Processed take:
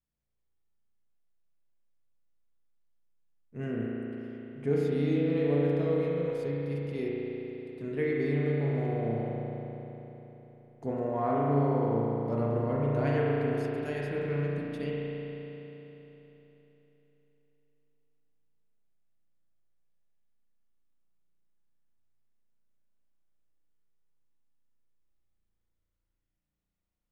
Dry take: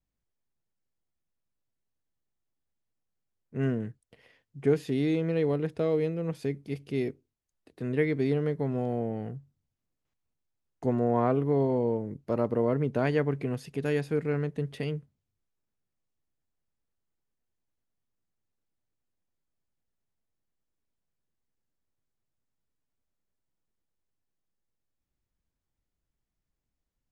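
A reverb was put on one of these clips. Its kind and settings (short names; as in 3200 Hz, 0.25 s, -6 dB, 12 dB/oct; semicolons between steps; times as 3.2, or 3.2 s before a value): spring tank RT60 3.7 s, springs 35 ms, chirp 35 ms, DRR -5 dB; gain -7 dB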